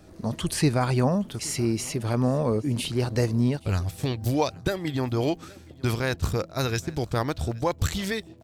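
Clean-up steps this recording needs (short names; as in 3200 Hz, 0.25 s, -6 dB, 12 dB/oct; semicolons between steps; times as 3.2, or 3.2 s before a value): de-click; inverse comb 0.821 s -23.5 dB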